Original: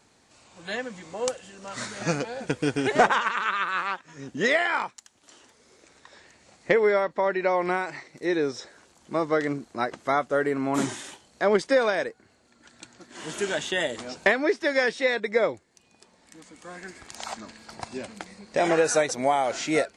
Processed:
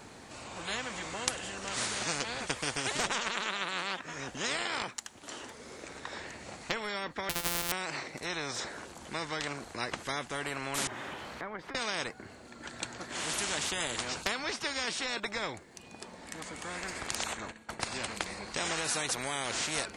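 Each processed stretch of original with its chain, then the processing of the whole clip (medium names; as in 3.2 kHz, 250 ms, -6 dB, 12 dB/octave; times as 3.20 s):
7.29–7.72 s: sorted samples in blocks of 256 samples + feedback comb 51 Hz, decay 0.23 s, mix 70%
10.87–11.75 s: zero-crossing glitches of -26.5 dBFS + low-pass 1.4 kHz + compression 2:1, threshold -47 dBFS
17.23–17.80 s: peaking EQ 4.9 kHz -15 dB 0.27 oct + expander -40 dBFS + compression 2:1, threshold -39 dBFS
whole clip: peaking EQ 6 kHz -5.5 dB 1.8 oct; spectrum-flattening compressor 4:1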